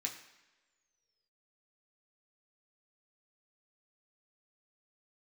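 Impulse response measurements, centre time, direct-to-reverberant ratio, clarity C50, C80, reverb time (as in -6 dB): 21 ms, -0.5 dB, 9.0 dB, 11.0 dB, no single decay rate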